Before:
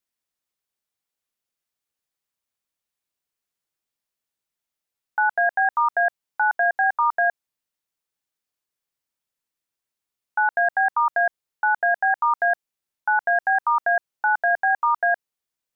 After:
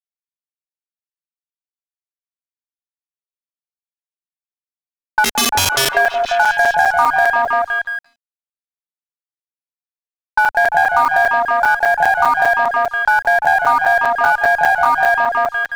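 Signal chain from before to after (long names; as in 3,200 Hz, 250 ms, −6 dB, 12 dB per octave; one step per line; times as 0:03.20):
in parallel at 0 dB: bit-depth reduction 6 bits, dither none
0:05.24–0:05.89: on the sum: wrap-around overflow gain 12 dB
on a send: echo through a band-pass that steps 172 ms, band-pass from 490 Hz, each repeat 0.7 octaves, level −1 dB
on the sum: low-pass that shuts in the quiet parts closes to 550 Hz, open at −15.5 dBFS
downward compressor 2 to 1, threshold −22 dBFS, peak gain reduction 7.5 dB
harmonic generator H 6 −28 dB, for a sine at −8.5 dBFS
dead-zone distortion −51.5 dBFS
regular buffer underruns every 0.20 s, samples 256, zero
level +7 dB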